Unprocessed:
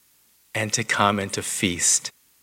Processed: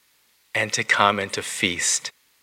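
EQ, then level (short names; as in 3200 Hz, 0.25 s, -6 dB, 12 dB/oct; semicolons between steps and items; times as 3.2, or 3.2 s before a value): ten-band EQ 500 Hz +6 dB, 1000 Hz +5 dB, 2000 Hz +8 dB, 4000 Hz +7 dB; -5.5 dB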